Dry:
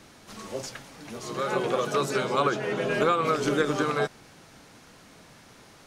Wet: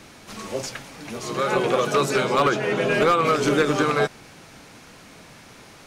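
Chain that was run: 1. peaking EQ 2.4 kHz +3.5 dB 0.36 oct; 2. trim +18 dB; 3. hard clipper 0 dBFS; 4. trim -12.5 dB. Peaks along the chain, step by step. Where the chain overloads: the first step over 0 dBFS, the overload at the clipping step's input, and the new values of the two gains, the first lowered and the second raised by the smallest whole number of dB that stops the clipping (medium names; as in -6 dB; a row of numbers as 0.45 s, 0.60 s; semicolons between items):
-10.0 dBFS, +8.0 dBFS, 0.0 dBFS, -12.5 dBFS; step 2, 8.0 dB; step 2 +10 dB, step 4 -4.5 dB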